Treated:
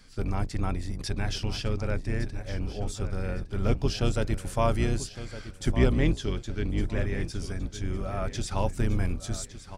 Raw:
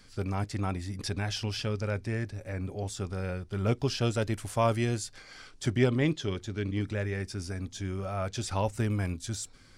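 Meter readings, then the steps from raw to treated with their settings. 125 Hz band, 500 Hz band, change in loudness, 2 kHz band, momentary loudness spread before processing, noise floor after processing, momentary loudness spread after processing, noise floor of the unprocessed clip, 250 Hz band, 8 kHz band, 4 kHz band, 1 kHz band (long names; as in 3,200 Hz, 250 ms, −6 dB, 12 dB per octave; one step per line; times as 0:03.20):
+1.5 dB, +0.5 dB, +1.5 dB, 0.0 dB, 9 LU, −46 dBFS, 9 LU, −54 dBFS, +1.0 dB, 0.0 dB, 0.0 dB, +0.5 dB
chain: sub-octave generator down 2 octaves, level +3 dB
on a send: repeating echo 1,160 ms, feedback 33%, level −13 dB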